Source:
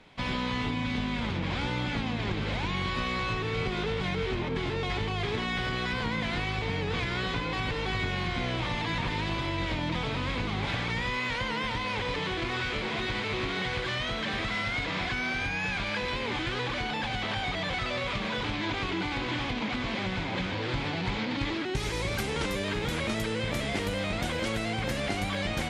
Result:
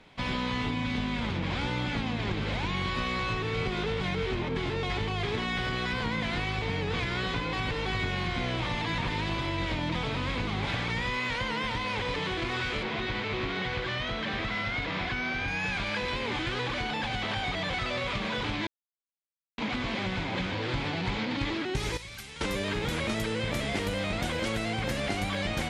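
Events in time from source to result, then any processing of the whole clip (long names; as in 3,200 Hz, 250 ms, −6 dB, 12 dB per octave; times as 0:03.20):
0:12.83–0:15.48: high-frequency loss of the air 86 metres
0:18.67–0:19.58: silence
0:21.97–0:22.41: guitar amp tone stack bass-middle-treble 5-5-5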